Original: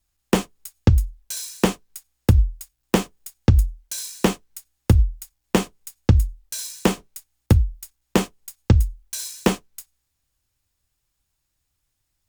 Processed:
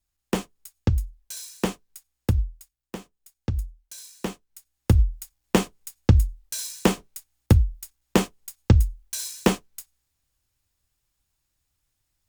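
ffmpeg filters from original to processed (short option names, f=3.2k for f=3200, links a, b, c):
-af "volume=11dB,afade=t=out:st=2.3:d=0.68:silence=0.251189,afade=t=in:st=2.98:d=0.58:silence=0.446684,afade=t=in:st=4.47:d=0.61:silence=0.298538"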